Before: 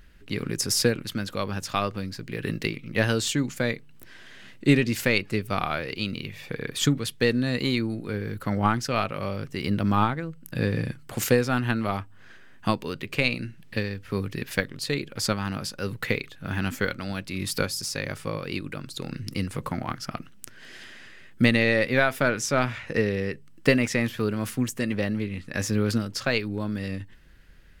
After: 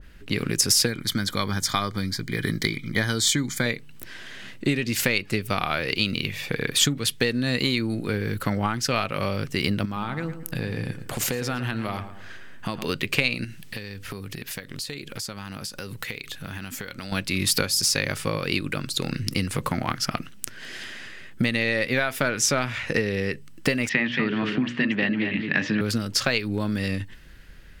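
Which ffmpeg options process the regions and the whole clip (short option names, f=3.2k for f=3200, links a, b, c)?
-filter_complex "[0:a]asettb=1/sr,asplit=3[a][b][c];[a]atrim=end=0.864[d];[b]atrim=start=0.86:end=3.66,asetpts=PTS-STARTPTS,afade=t=in:d=0.004:c=qsin,afade=t=out:st=2.796:d=0.004:c=qsin,asuperstop=centerf=2700:order=20:qfactor=5.3,equalizer=f=550:t=o:w=0.78:g=-7[e];[c]atrim=start=3.656[f];[d][e]acrossfade=d=0.004:c1=hsin:c2=qsin[g];[g][f]acrossfade=d=0.004:c1=qsin:c2=hsin,asettb=1/sr,asplit=3[h][i][j];[h]atrim=end=9.854[k];[i]atrim=start=9.85:end=12.89,asetpts=PTS-STARTPTS,afade=t=in:d=0.004:c=qsin,afade=t=out:st=3.036:d=0.004:c=qsin,acompressor=threshold=-31dB:ratio=5:attack=3.2:release=140:knee=1:detection=peak,asplit=2[l][m];[m]adelay=113,lowpass=f=2k:p=1,volume=-10dB,asplit=2[n][o];[o]adelay=113,lowpass=f=2k:p=1,volume=0.43,asplit=2[p][q];[q]adelay=113,lowpass=f=2k:p=1,volume=0.43,asplit=2[r][s];[s]adelay=113,lowpass=f=2k:p=1,volume=0.43,asplit=2[t][u];[u]adelay=113,lowpass=f=2k:p=1,volume=0.43[v];[l][n][p][r][t][v]amix=inputs=6:normalize=0,atrim=end_sample=134064[w];[j]atrim=start=12.886[x];[k][w]acrossfade=d=0.004:c1=hsin:c2=qsin[y];[y][x]acrossfade=d=0.004:c1=qsin:c2=hsin,asettb=1/sr,asplit=3[z][aa][ab];[z]atrim=end=13.444[ac];[aa]atrim=start=13.44:end=17.12,asetpts=PTS-STARTPTS,afade=t=in:d=0.004:c=qsin,afade=t=out:st=3.676:d=0.004:c=qsin,highshelf=f=3.7k:g=8,acompressor=threshold=-37dB:ratio=10:attack=3.2:release=140:knee=1:detection=peak[ad];[ab]atrim=start=17.116[ae];[ac][ad]acrossfade=d=0.004:c1=hsin:c2=qsin[af];[af][ae]acrossfade=d=0.004:c1=qsin:c2=hsin,asettb=1/sr,asplit=3[ag][ah][ai];[ag]atrim=end=23.894[aj];[ah]atrim=start=23.89:end=25.81,asetpts=PTS-STARTPTS,afade=t=in:d=0.004:c=qsin,afade=t=out:st=1.916:d=0.004:c=qsin,highpass=f=140:w=0.5412,highpass=f=140:w=1.3066,equalizer=f=150:t=q:w=4:g=8,equalizer=f=280:t=q:w=4:g=7,equalizer=f=500:t=q:w=4:g=-5,equalizer=f=870:t=q:w=4:g=4,equalizer=f=1.8k:t=q:w=4:g=7,equalizer=f=2.9k:t=q:w=4:g=5,lowpass=f=3.7k:w=0.5412,lowpass=f=3.7k:w=1.3066,bandreject=f=60:t=h:w=6,bandreject=f=120:t=h:w=6,bandreject=f=180:t=h:w=6,bandreject=f=240:t=h:w=6,bandreject=f=300:t=h:w=6,bandreject=f=360:t=h:w=6,bandreject=f=420:t=h:w=6,bandreject=f=480:t=h:w=6,bandreject=f=540:t=h:w=6,bandreject=f=600:t=h:w=6,aecho=1:1:226:0.376,atrim=end_sample=84672[ak];[ai]atrim=start=25.806[al];[aj][ak]acrossfade=d=0.004:c1=hsin:c2=qsin[am];[am][al]acrossfade=d=0.004:c1=qsin:c2=hsin,acompressor=threshold=-27dB:ratio=6,adynamicequalizer=threshold=0.00562:dfrequency=1700:dqfactor=0.7:tfrequency=1700:tqfactor=0.7:attack=5:release=100:ratio=0.375:range=2.5:mode=boostabove:tftype=highshelf,volume=6dB"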